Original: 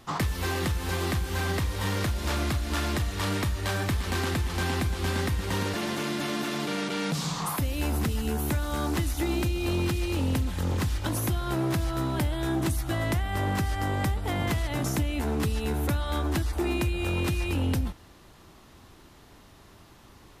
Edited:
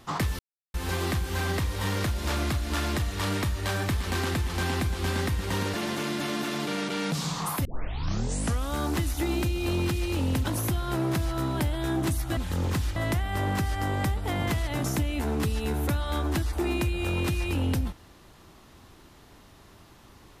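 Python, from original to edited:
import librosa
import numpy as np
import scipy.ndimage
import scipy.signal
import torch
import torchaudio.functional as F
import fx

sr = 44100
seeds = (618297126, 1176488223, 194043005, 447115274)

y = fx.edit(x, sr, fx.silence(start_s=0.39, length_s=0.35),
    fx.tape_start(start_s=7.65, length_s=1.08),
    fx.move(start_s=10.44, length_s=0.59, to_s=12.96), tone=tone)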